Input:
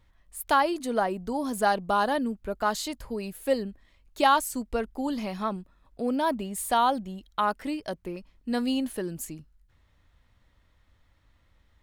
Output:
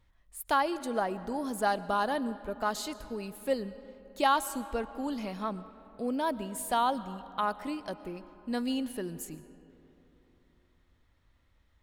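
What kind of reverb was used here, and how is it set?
digital reverb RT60 3.4 s, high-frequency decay 0.5×, pre-delay 80 ms, DRR 15 dB; gain -4.5 dB

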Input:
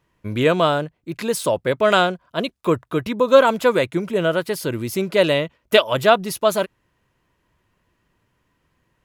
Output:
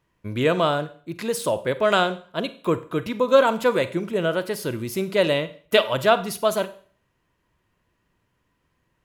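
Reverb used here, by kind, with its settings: Schroeder reverb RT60 0.46 s, combs from 32 ms, DRR 13 dB; gain -3.5 dB

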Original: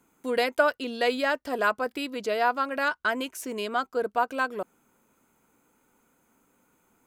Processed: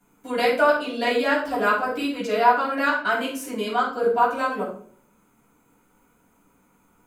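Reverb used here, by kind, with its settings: shoebox room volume 520 m³, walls furnished, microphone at 7.7 m; gain -6.5 dB

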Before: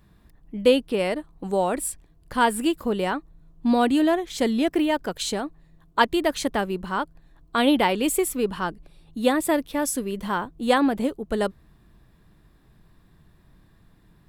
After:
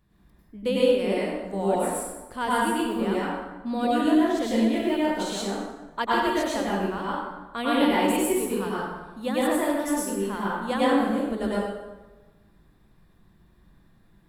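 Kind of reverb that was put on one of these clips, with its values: plate-style reverb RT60 1.2 s, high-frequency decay 0.65×, pre-delay 85 ms, DRR -7.5 dB; gain -10 dB

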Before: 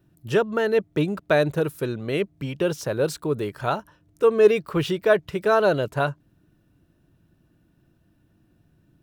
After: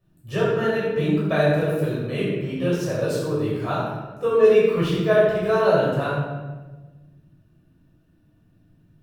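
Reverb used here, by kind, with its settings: shoebox room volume 770 m³, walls mixed, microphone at 5.9 m; gain -11 dB

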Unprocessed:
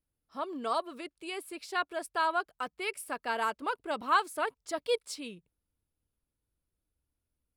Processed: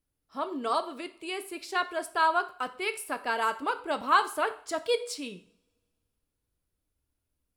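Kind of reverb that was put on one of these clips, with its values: two-slope reverb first 0.48 s, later 1.9 s, from -27 dB, DRR 9.5 dB; gain +3 dB

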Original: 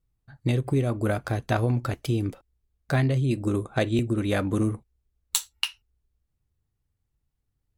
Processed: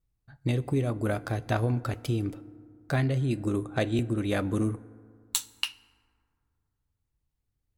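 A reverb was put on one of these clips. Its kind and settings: FDN reverb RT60 2.2 s, low-frequency decay 1.05×, high-frequency decay 0.4×, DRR 17.5 dB; gain -3 dB

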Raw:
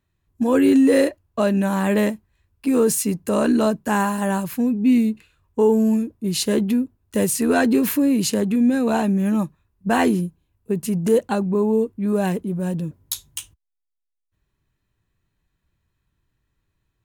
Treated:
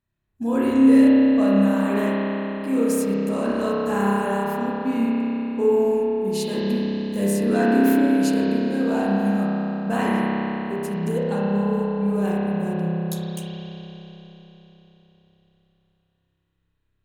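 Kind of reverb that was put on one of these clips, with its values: spring tank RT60 4 s, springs 30 ms, chirp 30 ms, DRR -7.5 dB; gain -9.5 dB

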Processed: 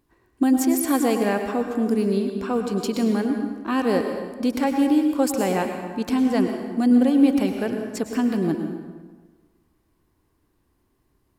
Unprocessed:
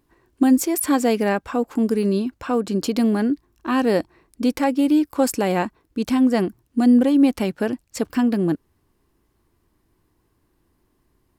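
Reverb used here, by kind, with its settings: plate-style reverb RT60 1.4 s, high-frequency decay 0.7×, pre-delay 90 ms, DRR 4.5 dB; gain -3 dB

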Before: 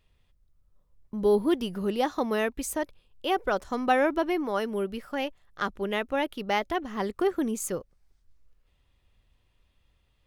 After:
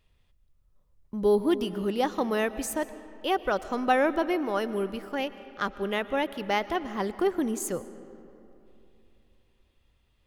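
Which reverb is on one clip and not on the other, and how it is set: digital reverb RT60 3 s, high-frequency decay 0.55×, pre-delay 80 ms, DRR 14.5 dB

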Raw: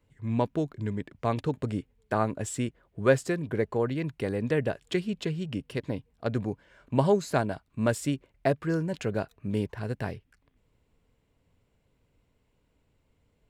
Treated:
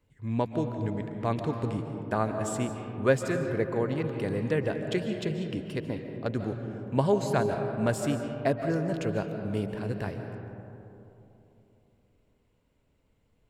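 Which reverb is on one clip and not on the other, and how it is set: digital reverb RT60 3.2 s, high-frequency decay 0.3×, pre-delay 0.105 s, DRR 5.5 dB; gain -1.5 dB

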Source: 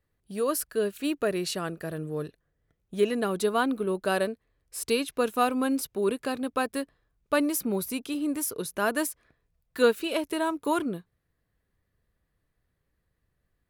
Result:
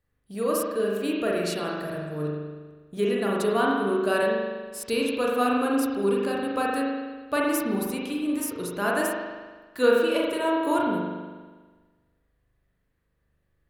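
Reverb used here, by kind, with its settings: spring tank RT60 1.4 s, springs 40 ms, chirp 70 ms, DRR -3.5 dB; gain -2 dB

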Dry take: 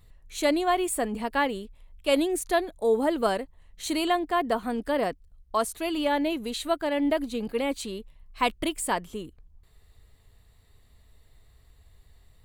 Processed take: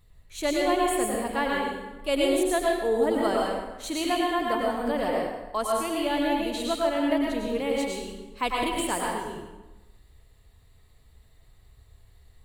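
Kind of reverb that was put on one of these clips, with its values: plate-style reverb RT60 1.1 s, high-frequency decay 0.75×, pre-delay 85 ms, DRR -2.5 dB; gain -3.5 dB

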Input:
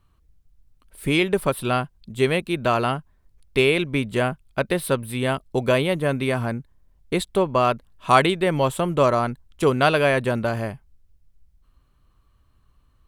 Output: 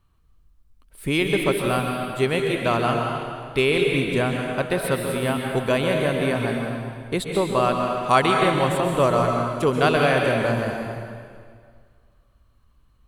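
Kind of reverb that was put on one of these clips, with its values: plate-style reverb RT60 2 s, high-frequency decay 0.9×, pre-delay 0.115 s, DRR 1 dB; gain -2 dB

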